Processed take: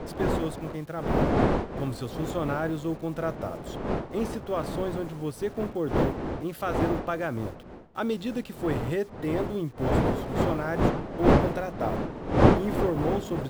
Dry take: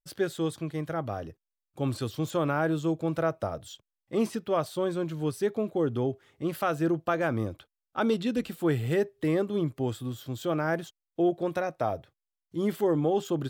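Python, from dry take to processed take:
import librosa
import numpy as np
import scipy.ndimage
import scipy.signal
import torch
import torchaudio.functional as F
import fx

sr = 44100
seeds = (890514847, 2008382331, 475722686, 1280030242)

y = fx.delta_hold(x, sr, step_db=-46.5)
y = fx.dmg_wind(y, sr, seeds[0], corner_hz=510.0, level_db=-26.0)
y = y * librosa.db_to_amplitude(-2.5)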